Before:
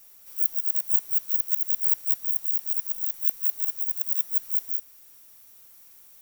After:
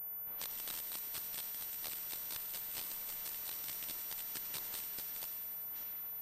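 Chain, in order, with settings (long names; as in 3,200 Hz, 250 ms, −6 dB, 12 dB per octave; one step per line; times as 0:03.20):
delay that plays each chunk backwards 584 ms, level −6 dB
brickwall limiter −13 dBFS, peak gain reduction 8.5 dB
speech leveller within 3 dB 0.5 s
low-pass that shuts in the quiet parts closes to 1,200 Hz, open at −23.5 dBFS
feedback echo with a high-pass in the loop 97 ms, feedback 79%, level −9 dB
switching amplifier with a slow clock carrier 14,000 Hz
level +4 dB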